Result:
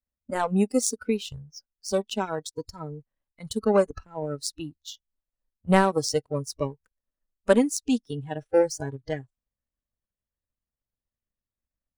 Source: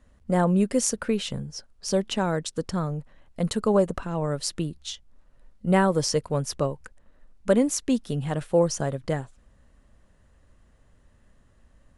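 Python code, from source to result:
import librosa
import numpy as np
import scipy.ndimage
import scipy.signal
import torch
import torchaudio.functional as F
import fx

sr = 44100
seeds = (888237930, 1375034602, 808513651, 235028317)

y = fx.power_curve(x, sr, exponent=1.4)
y = fx.noise_reduce_blind(y, sr, reduce_db=20)
y = y * 10.0 ** (4.5 / 20.0)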